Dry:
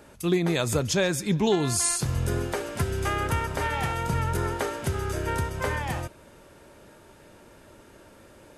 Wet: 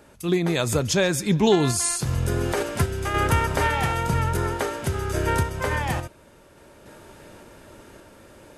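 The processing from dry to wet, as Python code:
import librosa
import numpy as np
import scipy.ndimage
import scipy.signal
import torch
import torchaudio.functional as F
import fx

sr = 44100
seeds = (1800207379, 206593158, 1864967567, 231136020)

y = fx.tremolo_random(x, sr, seeds[0], hz=3.5, depth_pct=55)
y = fx.env_flatten(y, sr, amount_pct=70, at=(2.07, 2.63))
y = y * librosa.db_to_amplitude(6.0)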